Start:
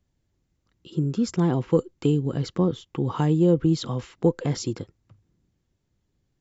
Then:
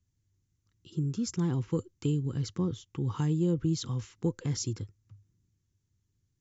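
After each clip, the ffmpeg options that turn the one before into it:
-af "equalizer=f=100:t=o:w=0.67:g=12,equalizer=f=630:t=o:w=0.67:g=-12,equalizer=f=6300:t=o:w=0.67:g=10,volume=0.376"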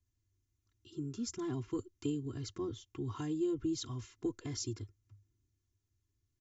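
-af "aecho=1:1:2.9:0.99,volume=0.422"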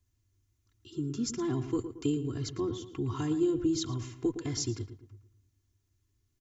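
-filter_complex "[0:a]asplit=2[s0][s1];[s1]adelay=113,lowpass=f=2000:p=1,volume=0.316,asplit=2[s2][s3];[s3]adelay=113,lowpass=f=2000:p=1,volume=0.43,asplit=2[s4][s5];[s5]adelay=113,lowpass=f=2000:p=1,volume=0.43,asplit=2[s6][s7];[s7]adelay=113,lowpass=f=2000:p=1,volume=0.43,asplit=2[s8][s9];[s9]adelay=113,lowpass=f=2000:p=1,volume=0.43[s10];[s0][s2][s4][s6][s8][s10]amix=inputs=6:normalize=0,volume=2"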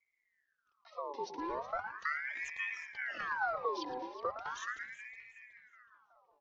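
-filter_complex "[0:a]asplit=2[s0][s1];[s1]adelay=371,lowpass=f=3200:p=1,volume=0.299,asplit=2[s2][s3];[s3]adelay=371,lowpass=f=3200:p=1,volume=0.52,asplit=2[s4][s5];[s5]adelay=371,lowpass=f=3200:p=1,volume=0.52,asplit=2[s6][s7];[s7]adelay=371,lowpass=f=3200:p=1,volume=0.52,asplit=2[s8][s9];[s9]adelay=371,lowpass=f=3200:p=1,volume=0.52,asplit=2[s10][s11];[s11]adelay=371,lowpass=f=3200:p=1,volume=0.52[s12];[s0][s2][s4][s6][s8][s10][s12]amix=inputs=7:normalize=0,aresample=11025,aresample=44100,aeval=exprs='val(0)*sin(2*PI*1400*n/s+1400*0.55/0.38*sin(2*PI*0.38*n/s))':c=same,volume=0.596"

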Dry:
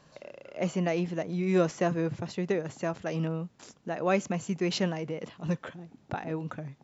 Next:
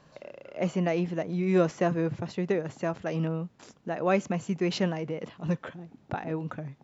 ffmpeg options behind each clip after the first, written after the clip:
-af "highshelf=f=4900:g=-8,volume=1.19"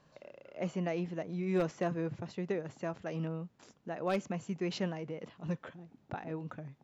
-af "aeval=exprs='0.188*(abs(mod(val(0)/0.188+3,4)-2)-1)':c=same,volume=0.422"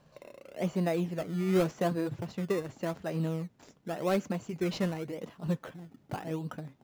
-filter_complex "[0:a]flanger=delay=1.2:depth=6.5:regen=-61:speed=0.42:shape=triangular,asplit=2[s0][s1];[s1]acrusher=samples=19:mix=1:aa=0.000001:lfo=1:lforange=19:lforate=0.88,volume=0.501[s2];[s0][s2]amix=inputs=2:normalize=0,volume=1.78"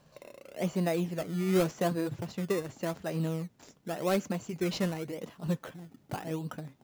-af "highshelf=f=4500:g=6.5"

